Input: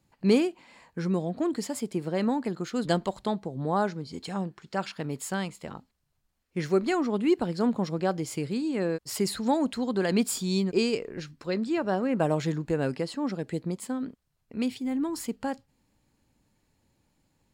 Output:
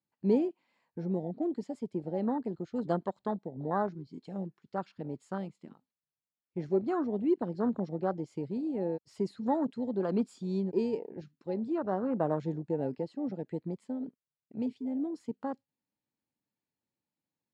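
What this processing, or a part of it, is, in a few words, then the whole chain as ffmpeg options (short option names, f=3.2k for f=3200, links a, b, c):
over-cleaned archive recording: -filter_complex "[0:a]asettb=1/sr,asplit=3[a][b][c];[a]atrim=end=13.314[d];[b]atrim=start=13.31:end=13.84,asetpts=PTS-STARTPTS,afade=t=in:d=0.004:c=qsin,afade=t=out:st=0.526:d=0.004:c=qsin,equalizer=f=2k:t=o:w=1.1:g=5[e];[c]atrim=start=13.836[f];[d][e]acrossfade=d=0.004:c1=hsin:c2=qsin[g];[g][f]acrossfade=d=0.004:c1=qsin:c2=hsin,highpass=150,lowpass=5.8k,afwtdn=0.0316,volume=-4dB"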